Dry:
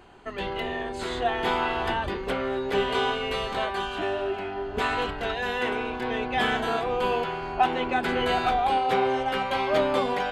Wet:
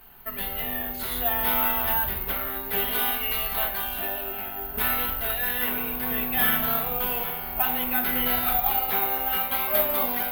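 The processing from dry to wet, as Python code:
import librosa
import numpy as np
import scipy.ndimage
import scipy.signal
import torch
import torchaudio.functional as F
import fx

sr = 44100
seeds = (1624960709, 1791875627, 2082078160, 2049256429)

y = fx.peak_eq(x, sr, hz=370.0, db=-11.0, octaves=1.5)
y = fx.room_shoebox(y, sr, seeds[0], volume_m3=670.0, walls='furnished', distance_m=1.5)
y = (np.kron(scipy.signal.resample_poly(y, 1, 3), np.eye(3)[0]) * 3)[:len(y)]
y = y * librosa.db_to_amplitude(-2.0)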